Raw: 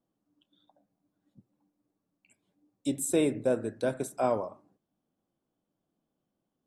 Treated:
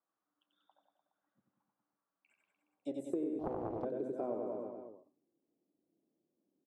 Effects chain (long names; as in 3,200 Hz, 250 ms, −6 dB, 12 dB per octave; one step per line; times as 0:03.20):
band-pass filter sweep 1,300 Hz → 340 Hz, 0:02.60–0:03.17
reverse bouncing-ball delay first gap 90 ms, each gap 1.1×, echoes 5
downward compressor 16 to 1, threshold −36 dBFS, peak gain reduction 14 dB
hum removal 127.8 Hz, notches 3
0:03.39–0:03.85: highs frequency-modulated by the lows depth 0.68 ms
level +3 dB